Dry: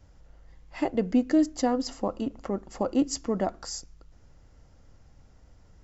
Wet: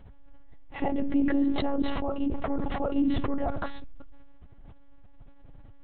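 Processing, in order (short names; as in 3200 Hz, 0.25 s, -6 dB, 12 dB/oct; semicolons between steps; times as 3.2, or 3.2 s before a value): bell 790 Hz +4 dB 0.34 oct; limiter -20.5 dBFS, peak gain reduction 8 dB; low shelf 260 Hz +6.5 dB; monotone LPC vocoder at 8 kHz 280 Hz; sustainer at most 21 dB/s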